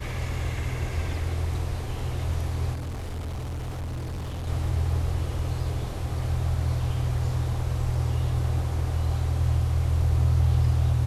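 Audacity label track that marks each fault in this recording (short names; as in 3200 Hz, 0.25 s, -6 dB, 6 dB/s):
2.730000	4.480000	clipped -29.5 dBFS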